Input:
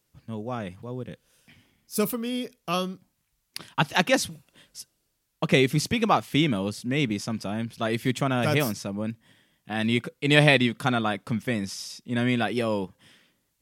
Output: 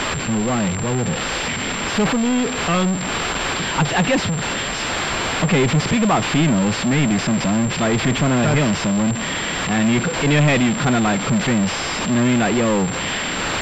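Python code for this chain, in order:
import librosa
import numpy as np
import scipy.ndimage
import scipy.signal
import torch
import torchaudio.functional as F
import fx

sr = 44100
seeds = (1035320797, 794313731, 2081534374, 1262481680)

y = x + 0.5 * 10.0 ** (-13.5 / 20.0) * np.diff(np.sign(x), prepend=np.sign(x[:1]))
y = fx.peak_eq(y, sr, hz=170.0, db=6.0, octaves=0.99)
y = fx.power_curve(y, sr, exponent=0.35)
y = fx.pwm(y, sr, carrier_hz=7400.0)
y = y * 10.0 ** (-6.0 / 20.0)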